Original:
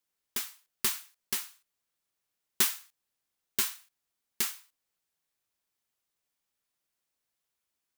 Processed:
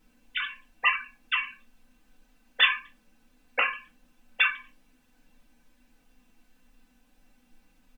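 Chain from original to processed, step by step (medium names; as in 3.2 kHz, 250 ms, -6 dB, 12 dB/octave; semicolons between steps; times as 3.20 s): formants replaced by sine waves; added noise pink -74 dBFS; comb 4 ms, depth 83%; small resonant body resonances 240/1600/2700 Hz, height 12 dB, ringing for 70 ms; reverberation RT60 0.30 s, pre-delay 5 ms, DRR 1.5 dB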